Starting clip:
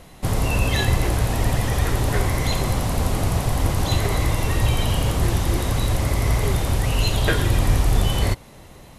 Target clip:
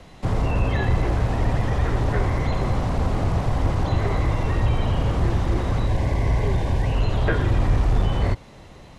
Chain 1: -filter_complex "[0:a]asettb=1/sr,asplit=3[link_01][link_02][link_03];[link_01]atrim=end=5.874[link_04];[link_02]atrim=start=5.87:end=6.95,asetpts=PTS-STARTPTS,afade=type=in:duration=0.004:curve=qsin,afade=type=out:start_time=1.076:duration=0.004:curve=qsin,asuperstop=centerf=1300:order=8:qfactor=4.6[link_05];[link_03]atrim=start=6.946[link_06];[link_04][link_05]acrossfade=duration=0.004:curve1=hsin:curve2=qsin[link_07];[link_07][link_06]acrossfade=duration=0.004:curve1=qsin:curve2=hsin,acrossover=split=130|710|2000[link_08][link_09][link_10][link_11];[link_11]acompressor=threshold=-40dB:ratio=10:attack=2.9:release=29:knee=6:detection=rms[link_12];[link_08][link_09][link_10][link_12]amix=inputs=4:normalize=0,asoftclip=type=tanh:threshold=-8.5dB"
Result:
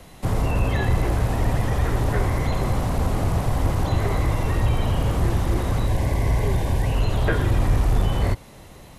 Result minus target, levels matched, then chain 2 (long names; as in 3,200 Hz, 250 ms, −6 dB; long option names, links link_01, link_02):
8,000 Hz band +6.5 dB
-filter_complex "[0:a]asettb=1/sr,asplit=3[link_01][link_02][link_03];[link_01]atrim=end=5.874[link_04];[link_02]atrim=start=5.87:end=6.95,asetpts=PTS-STARTPTS,afade=type=in:duration=0.004:curve=qsin,afade=type=out:start_time=1.076:duration=0.004:curve=qsin,asuperstop=centerf=1300:order=8:qfactor=4.6[link_05];[link_03]atrim=start=6.946[link_06];[link_04][link_05]acrossfade=duration=0.004:curve1=hsin:curve2=qsin[link_07];[link_07][link_06]acrossfade=duration=0.004:curve1=qsin:curve2=hsin,acrossover=split=130|710|2000[link_08][link_09][link_10][link_11];[link_11]acompressor=threshold=-40dB:ratio=10:attack=2.9:release=29:knee=6:detection=rms,lowpass=5800[link_12];[link_08][link_09][link_10][link_12]amix=inputs=4:normalize=0,asoftclip=type=tanh:threshold=-8.5dB"